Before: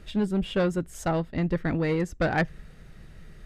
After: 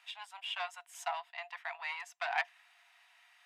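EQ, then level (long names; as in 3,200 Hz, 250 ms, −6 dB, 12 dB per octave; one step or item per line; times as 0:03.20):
Chebyshev high-pass with heavy ripple 680 Hz, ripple 9 dB
notch filter 4,400 Hz, Q 24
+1.0 dB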